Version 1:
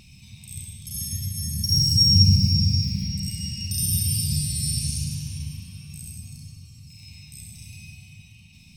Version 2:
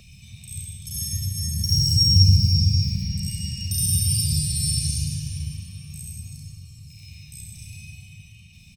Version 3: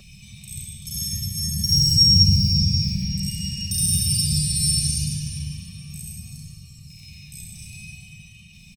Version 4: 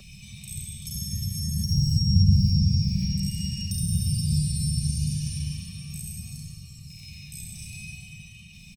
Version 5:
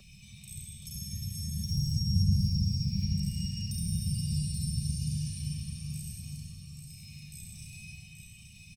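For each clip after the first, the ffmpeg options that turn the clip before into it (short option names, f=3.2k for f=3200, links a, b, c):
-filter_complex "[0:a]equalizer=f=990:t=o:w=0.7:g=-5,aecho=1:1:1.7:0.56,acrossover=split=150|3100[a][b][c];[b]alimiter=level_in=1.5dB:limit=-24dB:level=0:latency=1:release=164,volume=-1.5dB[d];[a][d][c]amix=inputs=3:normalize=0"
-af "aecho=1:1:5.2:0.49,volume=1.5dB"
-filter_complex "[0:a]acrossover=split=430[a][b];[b]acompressor=threshold=-35dB:ratio=4[c];[a][c]amix=inputs=2:normalize=0"
-af "aecho=1:1:830|1660|2490:0.422|0.105|0.0264,volume=-7.5dB"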